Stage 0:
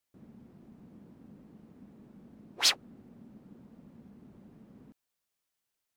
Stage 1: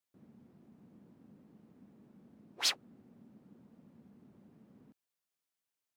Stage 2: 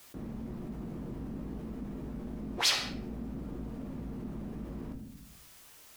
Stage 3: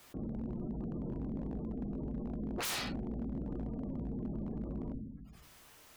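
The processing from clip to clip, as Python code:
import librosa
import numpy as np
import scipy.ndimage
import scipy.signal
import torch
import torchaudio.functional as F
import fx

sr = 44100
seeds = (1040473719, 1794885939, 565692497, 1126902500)

y1 = scipy.signal.sosfilt(scipy.signal.butter(2, 87.0, 'highpass', fs=sr, output='sos'), x)
y1 = y1 * 10.0 ** (-6.0 / 20.0)
y2 = fx.octave_divider(y1, sr, octaves=2, level_db=-4.0)
y2 = fx.room_shoebox(y2, sr, seeds[0], volume_m3=57.0, walls='mixed', distance_m=0.44)
y2 = fx.env_flatten(y2, sr, amount_pct=50)
y2 = y2 * 10.0 ** (2.0 / 20.0)
y3 = fx.high_shelf(y2, sr, hz=3200.0, db=-7.5)
y3 = fx.spec_gate(y3, sr, threshold_db=-25, keep='strong')
y3 = 10.0 ** (-33.0 / 20.0) * (np.abs((y3 / 10.0 ** (-33.0 / 20.0) + 3.0) % 4.0 - 2.0) - 1.0)
y3 = y3 * 10.0 ** (1.5 / 20.0)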